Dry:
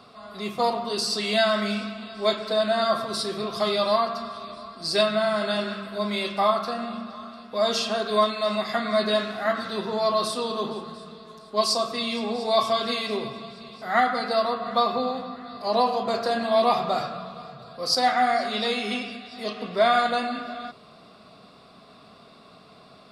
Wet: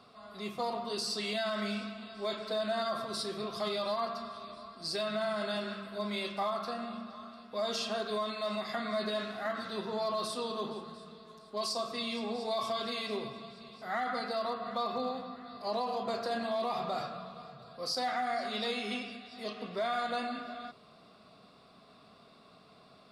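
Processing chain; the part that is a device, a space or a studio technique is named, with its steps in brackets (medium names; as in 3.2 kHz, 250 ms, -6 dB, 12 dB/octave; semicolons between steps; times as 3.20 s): limiter into clipper (peak limiter -17 dBFS, peak gain reduction 7.5 dB; hard clipper -18 dBFS, distortion -36 dB); trim -8 dB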